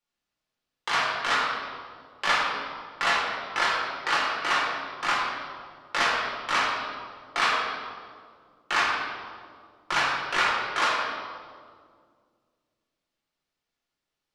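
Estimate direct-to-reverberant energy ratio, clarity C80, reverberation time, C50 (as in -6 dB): -5.5 dB, 2.0 dB, 2.0 s, 0.0 dB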